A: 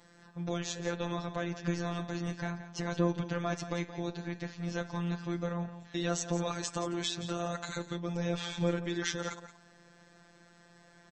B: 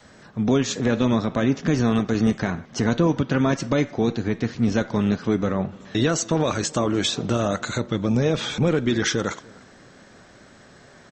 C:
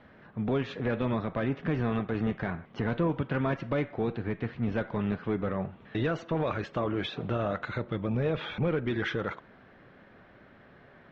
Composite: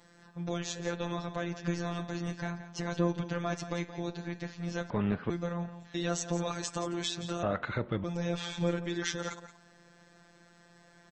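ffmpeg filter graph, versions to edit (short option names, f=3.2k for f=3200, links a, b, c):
-filter_complex "[2:a]asplit=2[a][b];[0:a]asplit=3[c][d][e];[c]atrim=end=4.902[f];[a]atrim=start=4.898:end=5.302[g];[d]atrim=start=5.298:end=7.432[h];[b]atrim=start=7.428:end=8.042[i];[e]atrim=start=8.038[j];[f][g]acrossfade=d=0.004:c1=hsin:c2=hsin[k];[k][h]acrossfade=d=0.004:c1=hsin:c2=hsin[l];[l][i]acrossfade=d=0.004:c1=hsin:c2=hsin[m];[m][j]acrossfade=d=0.004:c1=hsin:c2=hsin"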